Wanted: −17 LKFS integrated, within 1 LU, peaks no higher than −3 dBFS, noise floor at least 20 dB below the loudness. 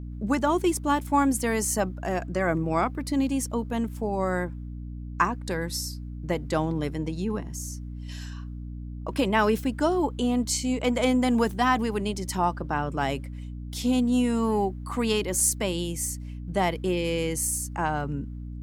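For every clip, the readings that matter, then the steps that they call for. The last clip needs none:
number of dropouts 1; longest dropout 2.6 ms; mains hum 60 Hz; hum harmonics up to 300 Hz; level of the hum −34 dBFS; integrated loudness −26.5 LKFS; sample peak −8.0 dBFS; target loudness −17.0 LKFS
→ repair the gap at 0:15.40, 2.6 ms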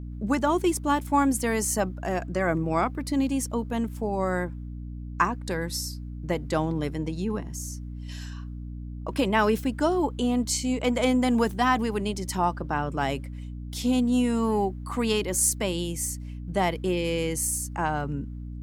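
number of dropouts 0; mains hum 60 Hz; hum harmonics up to 300 Hz; level of the hum −34 dBFS
→ mains-hum notches 60/120/180/240/300 Hz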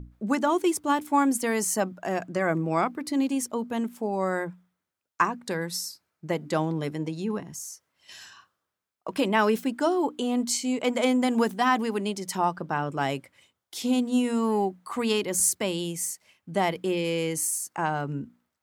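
mains hum none found; integrated loudness −27.0 LKFS; sample peak −8.5 dBFS; target loudness −17.0 LKFS
→ level +10 dB
brickwall limiter −3 dBFS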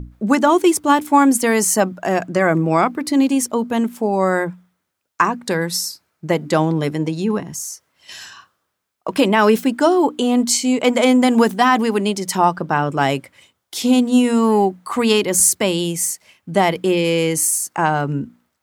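integrated loudness −17.0 LKFS; sample peak −3.0 dBFS; background noise floor −73 dBFS

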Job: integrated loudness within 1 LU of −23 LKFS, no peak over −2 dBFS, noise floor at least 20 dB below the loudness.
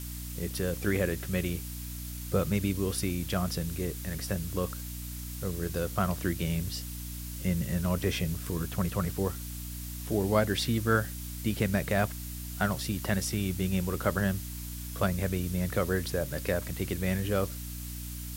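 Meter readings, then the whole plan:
mains hum 60 Hz; hum harmonics up to 300 Hz; level of the hum −37 dBFS; background noise floor −39 dBFS; target noise floor −52 dBFS; integrated loudness −31.5 LKFS; sample peak −11.0 dBFS; target loudness −23.0 LKFS
→ mains-hum notches 60/120/180/240/300 Hz
noise reduction from a noise print 13 dB
level +8.5 dB

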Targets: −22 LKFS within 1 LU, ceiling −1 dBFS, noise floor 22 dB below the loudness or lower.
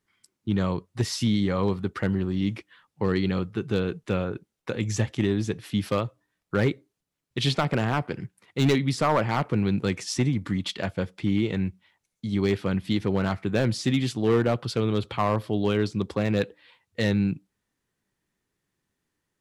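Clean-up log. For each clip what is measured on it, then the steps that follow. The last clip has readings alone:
share of clipped samples 0.6%; peaks flattened at −15.0 dBFS; integrated loudness −26.5 LKFS; sample peak −15.0 dBFS; target loudness −22.0 LKFS
→ clipped peaks rebuilt −15 dBFS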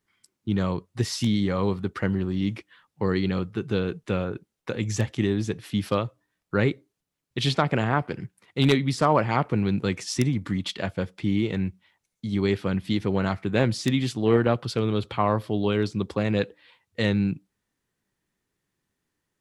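share of clipped samples 0.0%; integrated loudness −26.0 LKFS; sample peak −6.0 dBFS; target loudness −22.0 LKFS
→ level +4 dB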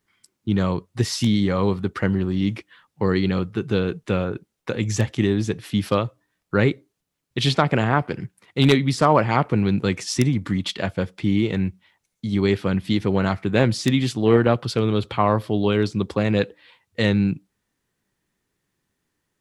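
integrated loudness −22.0 LKFS; sample peak −2.0 dBFS; background noise floor −78 dBFS

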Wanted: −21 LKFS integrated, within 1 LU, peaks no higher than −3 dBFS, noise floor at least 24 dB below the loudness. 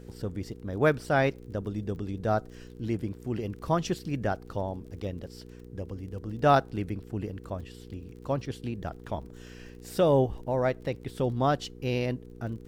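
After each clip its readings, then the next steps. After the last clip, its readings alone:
crackle rate 26 per second; mains hum 60 Hz; hum harmonics up to 480 Hz; level of the hum −45 dBFS; integrated loudness −30.5 LKFS; sample peak −9.0 dBFS; target loudness −21.0 LKFS
→ click removal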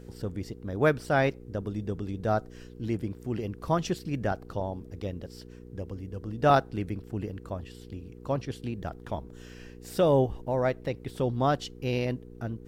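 crackle rate 0.079 per second; mains hum 60 Hz; hum harmonics up to 480 Hz; level of the hum −45 dBFS
→ hum removal 60 Hz, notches 8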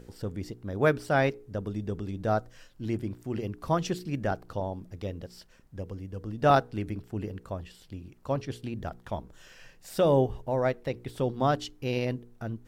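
mains hum none found; integrated loudness −30.5 LKFS; sample peak −9.5 dBFS; target loudness −21.0 LKFS
→ level +9.5 dB
brickwall limiter −3 dBFS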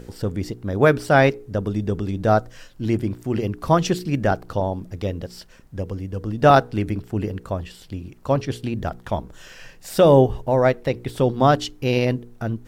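integrated loudness −21.5 LKFS; sample peak −3.0 dBFS; background noise floor −47 dBFS

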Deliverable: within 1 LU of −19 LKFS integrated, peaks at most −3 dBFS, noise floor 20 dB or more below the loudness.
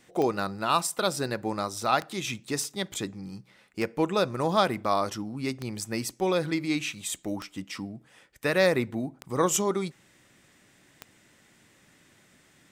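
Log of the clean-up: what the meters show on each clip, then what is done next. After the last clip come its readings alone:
number of clicks 7; integrated loudness −28.5 LKFS; sample peak −9.0 dBFS; target loudness −19.0 LKFS
→ click removal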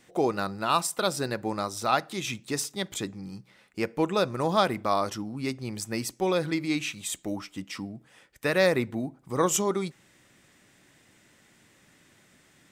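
number of clicks 0; integrated loudness −28.5 LKFS; sample peak −9.0 dBFS; target loudness −19.0 LKFS
→ level +9.5 dB
brickwall limiter −3 dBFS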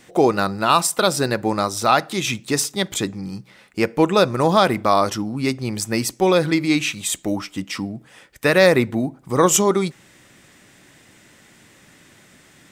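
integrated loudness −19.5 LKFS; sample peak −3.0 dBFS; background noise floor −52 dBFS

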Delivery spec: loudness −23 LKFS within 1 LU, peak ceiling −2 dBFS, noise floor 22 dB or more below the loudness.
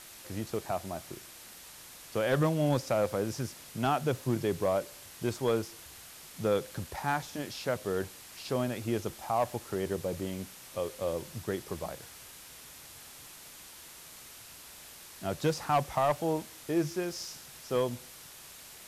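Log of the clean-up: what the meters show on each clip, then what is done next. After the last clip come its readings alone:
share of clipped samples 0.3%; peaks flattened at −20.0 dBFS; background noise floor −50 dBFS; target noise floor −55 dBFS; integrated loudness −33.0 LKFS; sample peak −20.0 dBFS; target loudness −23.0 LKFS
→ clipped peaks rebuilt −20 dBFS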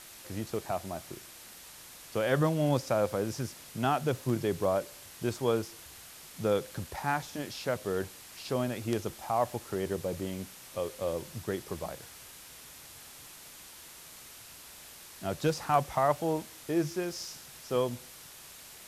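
share of clipped samples 0.0%; background noise floor −50 dBFS; target noise floor −55 dBFS
→ broadband denoise 6 dB, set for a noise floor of −50 dBFS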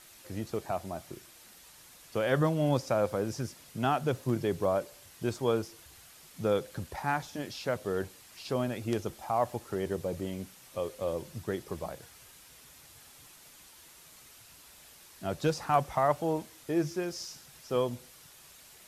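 background noise floor −55 dBFS; integrated loudness −32.5 LKFS; sample peak −12.0 dBFS; target loudness −23.0 LKFS
→ level +9.5 dB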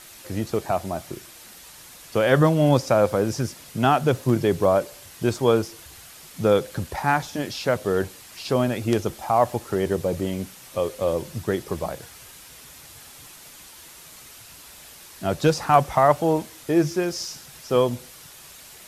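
integrated loudness −23.0 LKFS; sample peak −2.5 dBFS; background noise floor −46 dBFS

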